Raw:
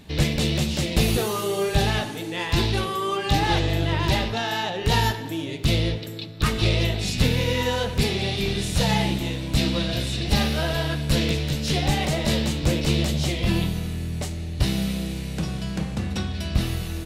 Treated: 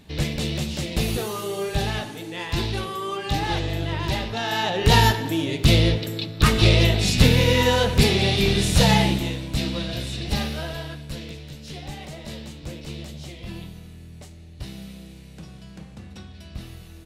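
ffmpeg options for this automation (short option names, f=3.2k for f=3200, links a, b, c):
-af "volume=5dB,afade=t=in:st=4.28:d=0.56:silence=0.375837,afade=t=out:st=8.86:d=0.64:silence=0.375837,afade=t=out:st=10.29:d=0.89:silence=0.316228"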